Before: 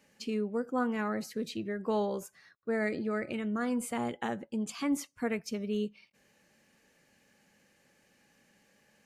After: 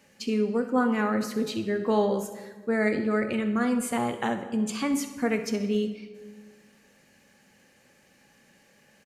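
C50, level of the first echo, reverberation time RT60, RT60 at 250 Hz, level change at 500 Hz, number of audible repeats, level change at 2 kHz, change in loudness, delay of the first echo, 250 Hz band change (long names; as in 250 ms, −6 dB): 9.0 dB, −15.5 dB, 1.4 s, 1.9 s, +7.0 dB, 1, +6.5 dB, +7.0 dB, 66 ms, +7.0 dB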